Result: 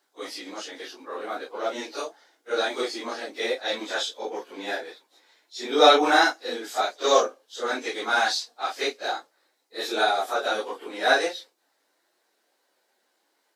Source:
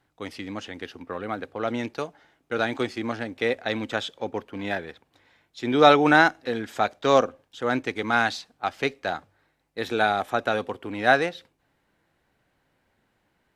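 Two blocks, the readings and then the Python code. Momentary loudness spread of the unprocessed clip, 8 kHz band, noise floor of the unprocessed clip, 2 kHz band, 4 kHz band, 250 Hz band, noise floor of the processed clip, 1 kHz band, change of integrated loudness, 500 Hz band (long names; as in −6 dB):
17 LU, +9.0 dB, −71 dBFS, −1.5 dB, +5.5 dB, −6.5 dB, −72 dBFS, −0.5 dB, −0.5 dB, −0.5 dB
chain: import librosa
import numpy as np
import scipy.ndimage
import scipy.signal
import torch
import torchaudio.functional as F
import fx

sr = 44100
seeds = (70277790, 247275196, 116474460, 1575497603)

y = fx.phase_scramble(x, sr, seeds[0], window_ms=100)
y = scipy.signal.sosfilt(scipy.signal.butter(4, 340.0, 'highpass', fs=sr, output='sos'), y)
y = fx.high_shelf_res(y, sr, hz=3500.0, db=7.5, q=1.5)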